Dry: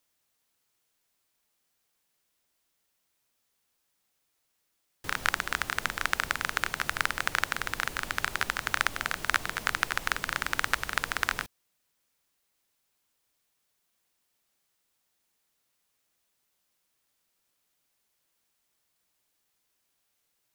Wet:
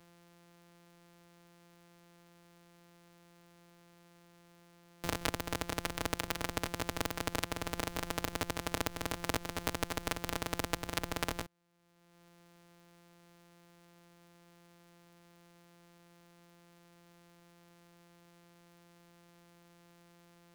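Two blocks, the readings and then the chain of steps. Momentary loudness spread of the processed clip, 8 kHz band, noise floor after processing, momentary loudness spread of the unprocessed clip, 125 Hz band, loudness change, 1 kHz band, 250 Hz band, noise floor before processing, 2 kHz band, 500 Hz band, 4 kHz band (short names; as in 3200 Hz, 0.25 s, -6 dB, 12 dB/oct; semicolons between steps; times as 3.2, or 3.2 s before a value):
2 LU, -3.5 dB, -63 dBFS, 3 LU, +4.0 dB, -7.0 dB, -7.0 dB, +6.0 dB, -77 dBFS, -12.5 dB, +4.5 dB, -5.5 dB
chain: sample sorter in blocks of 256 samples; three-band squash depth 70%; gain -6.5 dB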